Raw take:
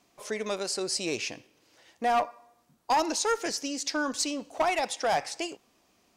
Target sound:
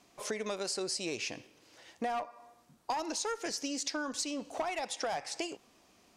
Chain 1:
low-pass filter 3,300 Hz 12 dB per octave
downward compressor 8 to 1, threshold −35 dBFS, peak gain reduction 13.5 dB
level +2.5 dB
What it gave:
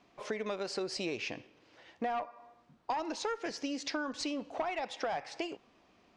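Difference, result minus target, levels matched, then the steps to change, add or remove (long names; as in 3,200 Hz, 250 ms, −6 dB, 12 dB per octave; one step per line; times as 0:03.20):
8,000 Hz band −8.5 dB
change: low-pass filter 13,000 Hz 12 dB per octave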